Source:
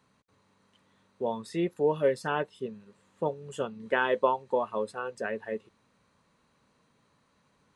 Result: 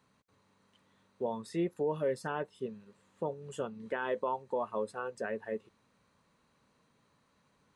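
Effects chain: dynamic EQ 3300 Hz, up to -5 dB, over -49 dBFS, Q 0.83; limiter -21 dBFS, peak gain reduction 9 dB; gain -2.5 dB

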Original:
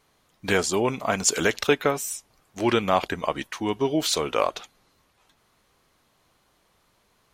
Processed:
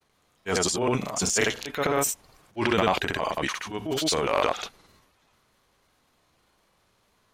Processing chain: grains, grains 20/s, pitch spread up and down by 0 st; transient shaper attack -8 dB, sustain +8 dB

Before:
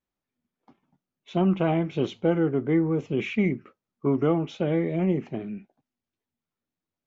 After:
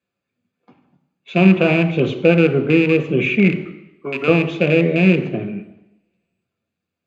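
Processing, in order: rattling part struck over -26 dBFS, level -23 dBFS; 3.51–4.28 HPF 990 Hz 6 dB/oct; reverb RT60 0.85 s, pre-delay 3 ms, DRR 7 dB

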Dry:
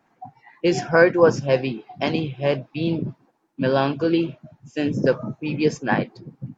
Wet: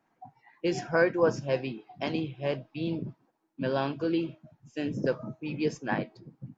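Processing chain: resonator 320 Hz, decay 0.3 s, harmonics all, mix 50%; gain -3.5 dB

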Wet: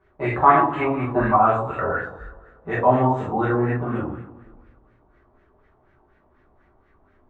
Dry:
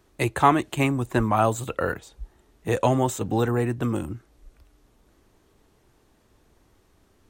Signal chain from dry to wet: two-slope reverb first 0.62 s, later 1.9 s, from -16 dB, DRR -9 dB; LFO low-pass sine 4.1 Hz 900–1900 Hz; gain -8 dB

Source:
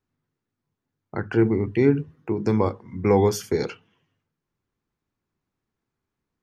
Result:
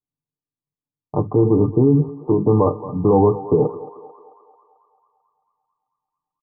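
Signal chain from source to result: gate -44 dBFS, range -24 dB; Chebyshev low-pass 1200 Hz, order 10; comb 6.7 ms, depth 63%; limiter -14.5 dBFS, peak gain reduction 10 dB; thinning echo 0.221 s, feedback 80%, high-pass 700 Hz, level -11 dB; gain +8.5 dB

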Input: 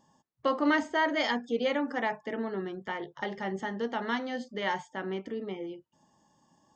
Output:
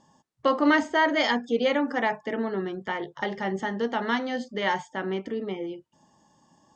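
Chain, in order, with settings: steep low-pass 10000 Hz; gain +5 dB

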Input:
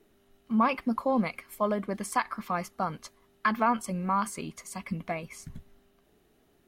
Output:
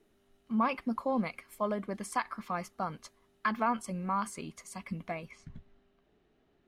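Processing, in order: LPF 12000 Hz 12 dB/oct, from 5.31 s 3800 Hz; gain -4.5 dB

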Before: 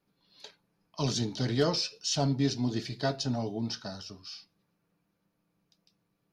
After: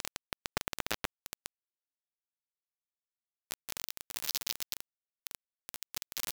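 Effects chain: Paulstretch 14×, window 0.50 s, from 1.58; band-pass sweep 1000 Hz -> 4200 Hz, 0.4–4.39; bit-crush 5-bit; gain +9 dB

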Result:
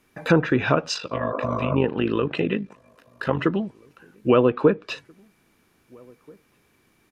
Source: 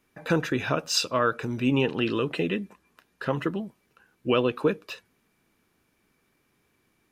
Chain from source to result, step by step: treble ducked by the level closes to 1600 Hz, closed at -20.5 dBFS; 1.17–1.72 spectral repair 240–1600 Hz before; 0.94–3.39 AM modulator 51 Hz, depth 50%; outdoor echo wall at 280 m, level -29 dB; gain +6.5 dB

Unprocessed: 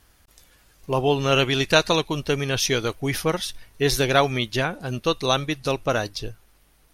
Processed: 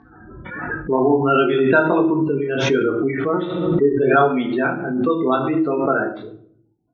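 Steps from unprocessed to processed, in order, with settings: median filter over 9 samples; spectral gate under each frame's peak -15 dB strong; dynamic EQ 300 Hz, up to +4 dB, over -30 dBFS, Q 0.72; chorus 1.4 Hz, delay 19 ms, depth 5.3 ms; speaker cabinet 200–4700 Hz, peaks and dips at 340 Hz +9 dB, 500 Hz -4 dB, 850 Hz +3 dB, 1400 Hz +9 dB, 2900 Hz -5 dB; shoebox room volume 890 m³, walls furnished, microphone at 1.6 m; backwards sustainer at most 37 dB/s; gain +2 dB

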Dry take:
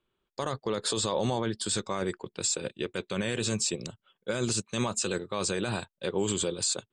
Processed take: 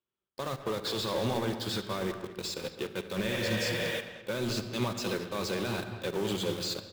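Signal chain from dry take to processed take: HPF 51 Hz 24 dB/oct; spectral repair 3.34–3.98, 400–4000 Hz before; LPF 5200 Hz 24 dB/oct; low shelf 140 Hz -3 dB; in parallel at -4 dB: companded quantiser 2-bit; on the sum: speakerphone echo 0.21 s, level -7 dB; on a send at -7.5 dB: reverb RT60 1.5 s, pre-delay 48 ms; on the sum: upward expander 1.5:1, over -35 dBFS; gain -6 dB

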